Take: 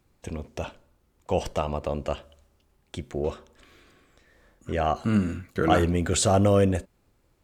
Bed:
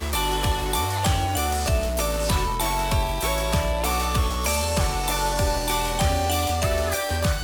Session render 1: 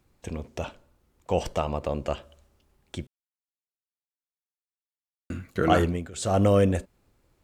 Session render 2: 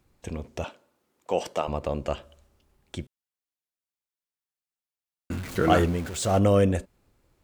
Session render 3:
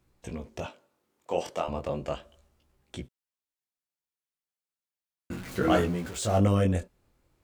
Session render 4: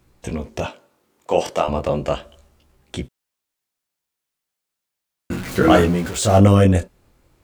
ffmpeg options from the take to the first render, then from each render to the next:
-filter_complex "[0:a]asplit=5[a][b][c][d][e];[a]atrim=end=3.07,asetpts=PTS-STARTPTS,afade=t=out:st=3.066:d=0.004:c=hsin[f];[b]atrim=start=3.07:end=5.3,asetpts=PTS-STARTPTS,volume=0[g];[c]atrim=start=5.3:end=6.11,asetpts=PTS-STARTPTS,afade=t=in:d=0.004:c=hsin,afade=t=out:st=0.51:d=0.3:silence=0.112202[h];[d]atrim=start=6.11:end=6.13,asetpts=PTS-STARTPTS,volume=-19dB[i];[e]atrim=start=6.13,asetpts=PTS-STARTPTS,afade=t=in:d=0.3:silence=0.112202[j];[f][g][h][i][j]concat=n=5:v=0:a=1"
-filter_complex "[0:a]asettb=1/sr,asplit=3[a][b][c];[a]atrim=end=0.644[d];[b]atrim=start=0.64:end=1.68,asetpts=PTS-STARTPTS,afade=t=in:d=0.004:c=qsin,afade=t=out:st=1.036:d=0.004:c=qsin,highpass=250[e];[c]atrim=start=1.676[f];[d][e]acrossfade=d=0.004:c1=hsin:c2=qsin[g];[g][f]acrossfade=d=0.004:c1=qsin:c2=hsin,asettb=1/sr,asplit=3[h][i][j];[h]atrim=end=5.314[k];[i]atrim=start=5.31:end=6.39,asetpts=PTS-STARTPTS,afade=t=in:d=0.004:c=qsin,afade=t=out:st=1.076:d=0.004:c=qsin,aeval=exprs='val(0)+0.5*0.0211*sgn(val(0))':c=same[l];[j]atrim=start=6.386[m];[k][l]acrossfade=d=0.004:c1=hsin:c2=qsin[n];[n][m]acrossfade=d=0.004:c1=qsin:c2=hsin"
-af "flanger=delay=16:depth=7.8:speed=0.35"
-af "volume=11dB,alimiter=limit=-2dB:level=0:latency=1"

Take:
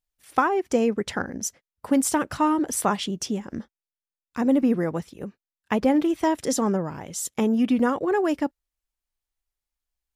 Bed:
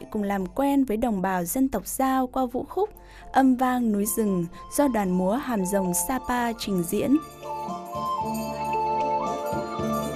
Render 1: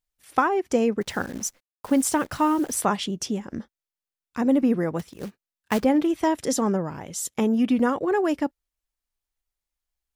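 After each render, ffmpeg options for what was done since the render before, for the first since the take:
-filter_complex "[0:a]asettb=1/sr,asplit=3[a][b][c];[a]atrim=end=1.014[d];[b]atrim=start=1.01:end=2.81,asetpts=PTS-STARTPTS,afade=t=in:d=0.004:c=qsin,afade=t=out:st=1.796:d=0.004:c=qsin,acrusher=bits=8:dc=4:mix=0:aa=0.000001[e];[c]atrim=start=2.806[f];[d][e]acrossfade=d=0.004:c1=hsin:c2=qsin[g];[g][f]acrossfade=d=0.004:c1=qsin:c2=hsin,asettb=1/sr,asplit=3[h][i][j];[h]atrim=end=4.994[k];[i]atrim=start=4.99:end=5.84,asetpts=PTS-STARTPTS,afade=t=in:d=0.004:c=qsin,afade=t=out:st=0.846:d=0.004:c=qsin,acrusher=bits=3:mode=log:mix=0:aa=0.000001[l];[j]atrim=start=5.836[m];[k][l]acrossfade=d=0.004:c1=hsin:c2=qsin[n];[n][m]acrossfade=d=0.004:c1=qsin:c2=hsin"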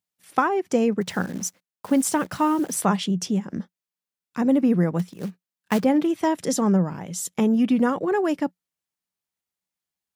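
-af "highpass=f=94:w=0.5412,highpass=f=94:w=1.3066,equalizer=f=180:t=o:w=0.3:g=11"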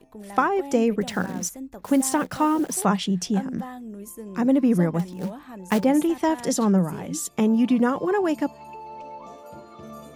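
-filter_complex "[1:a]volume=-14dB[a];[0:a][a]amix=inputs=2:normalize=0"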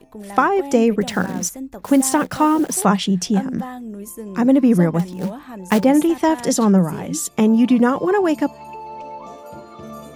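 -af "volume=5.5dB,alimiter=limit=-2dB:level=0:latency=1"

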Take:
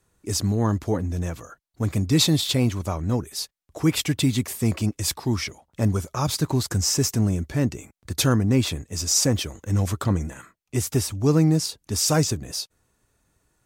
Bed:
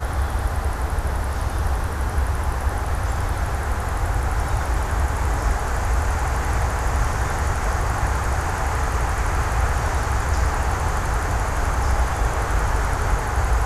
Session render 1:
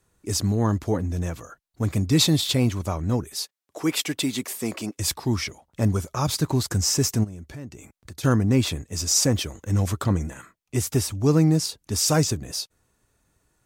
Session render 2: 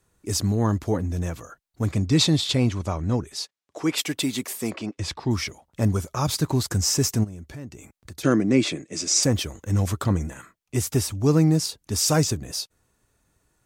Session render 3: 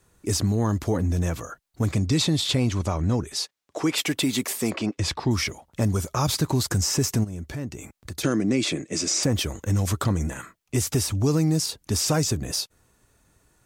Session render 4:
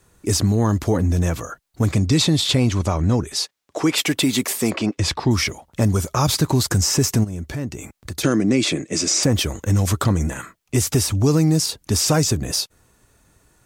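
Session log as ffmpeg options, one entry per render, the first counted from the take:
-filter_complex "[0:a]asettb=1/sr,asplit=3[a][b][c];[a]atrim=end=3.384[d];[b]atrim=start=3.38:end=4.98,asetpts=PTS-STARTPTS,afade=t=in:d=0.004:c=qsin,afade=t=out:st=1.596:d=0.004:c=qsin,highpass=280[e];[c]atrim=start=4.976[f];[d][e]acrossfade=d=0.004:c1=hsin:c2=qsin[g];[g][f]acrossfade=d=0.004:c1=qsin:c2=hsin,asplit=3[h][i][j];[h]afade=t=out:st=7.23:d=0.02[k];[i]acompressor=threshold=-39dB:ratio=3:attack=3.2:release=140:knee=1:detection=peak,afade=t=in:st=7.23:d=0.02,afade=t=out:st=8.23:d=0.02[l];[j]afade=t=in:st=8.23:d=0.02[m];[k][l][m]amix=inputs=3:normalize=0"
-filter_complex "[0:a]asettb=1/sr,asplit=3[a][b][c];[a]atrim=end=1.914[d];[b]atrim=start=1.91:end=3.98,asetpts=PTS-STARTPTS,afade=t=in:d=0.004:c=qsin,afade=t=out:st=2.066:d=0.004:c=qsin,lowpass=7.4k[e];[c]atrim=start=3.976[f];[d][e]acrossfade=d=0.004:c1=hsin:c2=qsin[g];[g][f]acrossfade=d=0.004:c1=qsin:c2=hsin,asettb=1/sr,asplit=3[h][i][j];[h]atrim=end=4.704[k];[i]atrim=start=4.7:end=5.31,asetpts=PTS-STARTPTS,afade=t=in:d=0.004:c=qsin,afade=t=out:st=0.606:d=0.004:c=qsin,lowpass=4.1k[l];[j]atrim=start=5.306[m];[k][l]acrossfade=d=0.004:c1=hsin:c2=qsin[n];[n][m]acrossfade=d=0.004:c1=qsin:c2=hsin,asettb=1/sr,asplit=3[o][p][q];[o]atrim=end=8.234[r];[p]atrim=start=8.23:end=9.23,asetpts=PTS-STARTPTS,afade=t=in:d=0.004:c=qsin,afade=t=out:st=0.996:d=0.004:c=qsin,highpass=f=150:w=0.5412,highpass=f=150:w=1.3066,equalizer=f=330:t=q:w=4:g=9,equalizer=f=590:t=q:w=4:g=4,equalizer=f=900:t=q:w=4:g=-7,equalizer=f=2.2k:t=q:w=4:g=7,lowpass=f=8.6k:w=0.5412,lowpass=f=8.6k:w=1.3066[s];[q]atrim=start=9.226[t];[r][s]acrossfade=d=0.004:c1=hsin:c2=qsin[u];[u][t]acrossfade=d=0.004:c1=qsin:c2=hsin"
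-filter_complex "[0:a]acrossover=split=3300|7300[a][b][c];[a]acompressor=threshold=-23dB:ratio=4[d];[b]acompressor=threshold=-34dB:ratio=4[e];[c]acompressor=threshold=-36dB:ratio=4[f];[d][e][f]amix=inputs=3:normalize=0,asplit=2[g][h];[h]alimiter=limit=-23dB:level=0:latency=1,volume=-1dB[i];[g][i]amix=inputs=2:normalize=0"
-af "volume=5dB"

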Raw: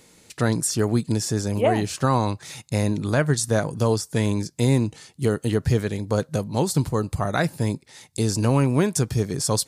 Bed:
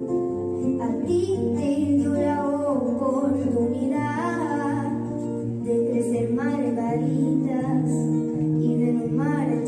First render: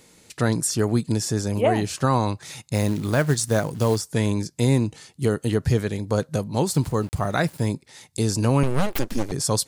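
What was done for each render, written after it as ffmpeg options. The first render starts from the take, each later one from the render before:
-filter_complex "[0:a]asettb=1/sr,asplit=3[a][b][c];[a]atrim=end=2.744[d];[b]atrim=start=2.74:end=4.12,asetpts=PTS-STARTPTS,afade=t=in:d=0.004:c=qsin,afade=t=out:st=1.376:d=0.004:c=qsin,acrusher=bits=5:mode=log:mix=0:aa=0.000001[e];[c]atrim=start=4.116[f];[d][e]acrossfade=d=0.004:c1=hsin:c2=qsin[g];[g][f]acrossfade=d=0.004:c1=qsin:c2=hsin,asettb=1/sr,asplit=3[h][i][j];[h]atrim=end=6.664[k];[i]atrim=start=6.66:end=7.66,asetpts=PTS-STARTPTS,afade=t=in:d=0.004:c=qsin,afade=t=out:st=0.996:d=0.004:c=qsin,aeval=exprs='val(0)*gte(abs(val(0)),0.00891)':c=same[l];[j]atrim=start=7.656[m];[k][l]acrossfade=d=0.004:c1=hsin:c2=qsin[n];[n][m]acrossfade=d=0.004:c1=qsin:c2=hsin,asettb=1/sr,asplit=3[o][p][q];[o]atrim=end=8.634[r];[p]atrim=start=8.63:end=9.32,asetpts=PTS-STARTPTS,afade=t=in:d=0.004:c=qsin,afade=t=out:st=0.686:d=0.004:c=qsin,aeval=exprs='abs(val(0))':c=same[s];[q]atrim=start=9.316[t];[r][s]acrossfade=d=0.004:c1=hsin:c2=qsin[u];[u][t]acrossfade=d=0.004:c1=qsin:c2=hsin"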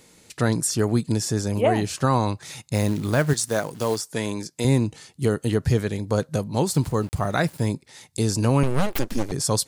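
-filter_complex "[0:a]asettb=1/sr,asplit=3[a][b][c];[a]atrim=end=3.334[d];[b]atrim=start=3.33:end=4.65,asetpts=PTS-STARTPTS,afade=t=in:d=0.004:c=qsin,afade=t=out:st=1.316:d=0.004:c=qsin,highpass=f=340:p=1[e];[c]atrim=start=4.646[f];[d][e]acrossfade=d=0.004:c1=hsin:c2=qsin[g];[g][f]acrossfade=d=0.004:c1=qsin:c2=hsin"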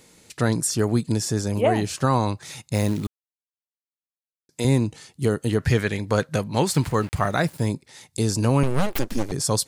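-filter_complex "[0:a]asettb=1/sr,asplit=3[a][b][c];[a]atrim=end=5.584[d];[b]atrim=start=5.58:end=7.29,asetpts=PTS-STARTPTS,afade=t=in:d=0.004:c=qsin,afade=t=out:st=1.706:d=0.004:c=qsin,equalizer=f=2k:t=o:w=1.7:g=9.5[e];[c]atrim=start=7.286[f];[d][e]acrossfade=d=0.004:c1=hsin:c2=qsin[g];[g][f]acrossfade=d=0.004:c1=qsin:c2=hsin,asplit=3[h][i][j];[h]atrim=end=3.07,asetpts=PTS-STARTPTS,afade=t=out:st=3.066:d=0.004:c=hsin[k];[i]atrim=start=3.07:end=4.49,asetpts=PTS-STARTPTS,volume=0[l];[j]atrim=start=4.49,asetpts=PTS-STARTPTS,afade=t=in:d=0.004:c=hsin[m];[k][l][m]concat=n=3:v=0:a=1"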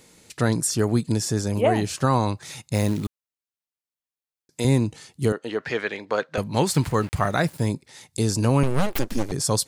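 -filter_complex "[0:a]asettb=1/sr,asplit=3[a][b][c];[a]atrim=end=5.324[d];[b]atrim=start=5.32:end=6.38,asetpts=PTS-STARTPTS,afade=t=in:d=0.004:c=qsin,afade=t=out:st=1.056:d=0.004:c=qsin,highpass=400,lowpass=3.8k[e];[c]atrim=start=6.376[f];[d][e]acrossfade=d=0.004:c1=hsin:c2=qsin[g];[g][f]acrossfade=d=0.004:c1=qsin:c2=hsin"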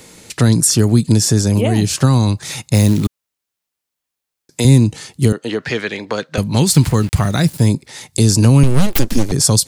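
-filter_complex "[0:a]acrossover=split=280|3000[a][b][c];[b]acompressor=threshold=-34dB:ratio=6[d];[a][d][c]amix=inputs=3:normalize=0,alimiter=level_in=12dB:limit=-1dB:release=50:level=0:latency=1"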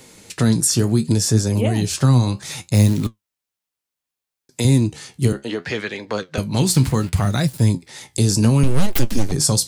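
-af "flanger=delay=7.3:depth=9.5:regen=60:speed=0.67:shape=triangular"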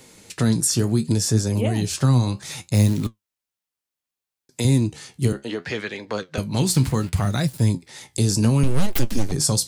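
-af "volume=-3dB"

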